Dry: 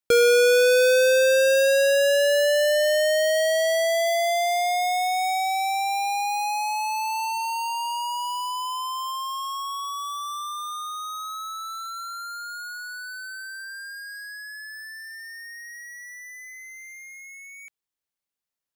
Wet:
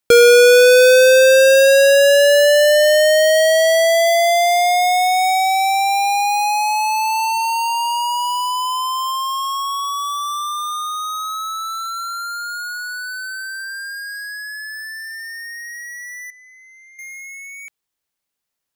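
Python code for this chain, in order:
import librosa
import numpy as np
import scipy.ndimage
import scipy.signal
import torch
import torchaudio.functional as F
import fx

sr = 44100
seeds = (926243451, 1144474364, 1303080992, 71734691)

y = fx.bandpass_q(x, sr, hz=3200.0, q=3.9, at=(16.3, 16.99))
y = y * librosa.db_to_amplitude(8.5)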